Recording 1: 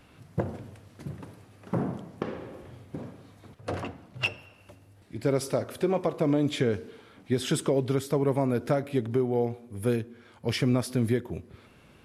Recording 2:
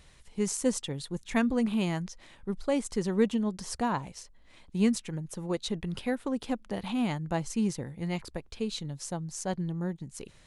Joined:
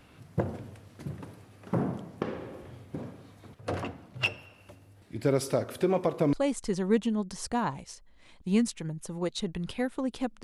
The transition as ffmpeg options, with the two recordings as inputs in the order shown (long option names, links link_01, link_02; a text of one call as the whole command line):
ffmpeg -i cue0.wav -i cue1.wav -filter_complex "[0:a]apad=whole_dur=10.43,atrim=end=10.43,atrim=end=6.332[link_01];[1:a]atrim=start=2.608:end=6.71[link_02];[link_01][link_02]acrossfade=duration=0.004:curve1=hsin:curve2=hsin" out.wav